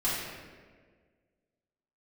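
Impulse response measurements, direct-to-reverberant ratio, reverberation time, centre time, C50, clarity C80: −10.5 dB, 1.6 s, 95 ms, −1.0 dB, 1.5 dB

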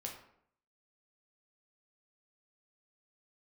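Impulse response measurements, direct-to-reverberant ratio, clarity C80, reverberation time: −0.5 dB, 9.5 dB, 0.65 s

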